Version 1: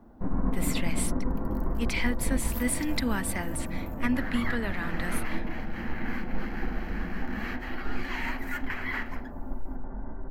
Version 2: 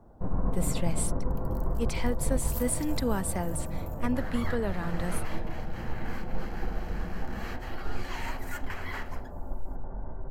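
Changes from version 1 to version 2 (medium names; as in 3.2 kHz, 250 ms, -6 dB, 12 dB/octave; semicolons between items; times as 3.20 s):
speech: add tilt shelf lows +6 dB, about 1.3 kHz; master: add ten-band graphic EQ 125 Hz +7 dB, 250 Hz -10 dB, 500 Hz +4 dB, 2 kHz -8 dB, 8 kHz +7 dB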